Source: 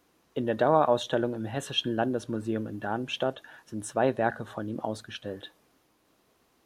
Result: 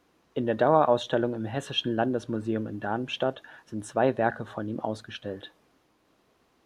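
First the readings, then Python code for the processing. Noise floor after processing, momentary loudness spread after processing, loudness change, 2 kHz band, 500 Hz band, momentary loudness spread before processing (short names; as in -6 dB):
-68 dBFS, 15 LU, +1.5 dB, +1.0 dB, +1.5 dB, 15 LU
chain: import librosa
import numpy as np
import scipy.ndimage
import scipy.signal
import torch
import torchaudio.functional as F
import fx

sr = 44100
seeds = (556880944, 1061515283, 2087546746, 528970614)

y = fx.high_shelf(x, sr, hz=7700.0, db=-11.5)
y = y * 10.0 ** (1.5 / 20.0)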